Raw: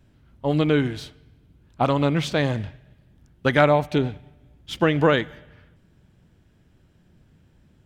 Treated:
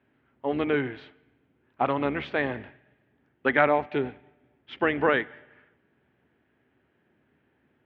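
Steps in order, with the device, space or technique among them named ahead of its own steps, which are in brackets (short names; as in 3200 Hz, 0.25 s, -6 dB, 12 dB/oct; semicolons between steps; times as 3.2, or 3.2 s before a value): sub-octave bass pedal (octaver, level -4 dB; speaker cabinet 79–2400 Hz, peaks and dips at 94 Hz -9 dB, 170 Hz -7 dB, 260 Hz +5 dB, 400 Hz +6 dB, 790 Hz +3 dB, 1800 Hz +3 dB); tilt +3 dB/oct; gain -4 dB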